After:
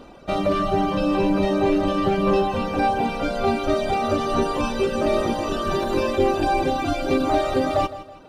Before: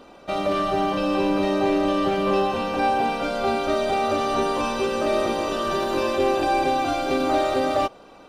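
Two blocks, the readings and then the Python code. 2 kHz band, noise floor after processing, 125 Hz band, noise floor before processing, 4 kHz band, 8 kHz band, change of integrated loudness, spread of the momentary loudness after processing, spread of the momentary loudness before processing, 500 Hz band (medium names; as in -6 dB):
-1.0 dB, -43 dBFS, +6.5 dB, -47 dBFS, -1.5 dB, -1.0 dB, +0.5 dB, 4 LU, 3 LU, +0.5 dB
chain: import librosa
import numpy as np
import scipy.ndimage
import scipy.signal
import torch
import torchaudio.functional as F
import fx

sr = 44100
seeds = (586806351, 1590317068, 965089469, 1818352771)

y = fx.dereverb_blind(x, sr, rt60_s=0.89)
y = fx.low_shelf(y, sr, hz=210.0, db=11.0)
y = fx.echo_feedback(y, sr, ms=163, feedback_pct=40, wet_db=-15)
y = y * 10.0 ** (1.0 / 20.0)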